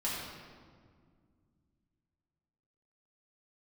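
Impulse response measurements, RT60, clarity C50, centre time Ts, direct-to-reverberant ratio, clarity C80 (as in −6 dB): 1.9 s, −1.0 dB, 98 ms, −8.0 dB, 1.0 dB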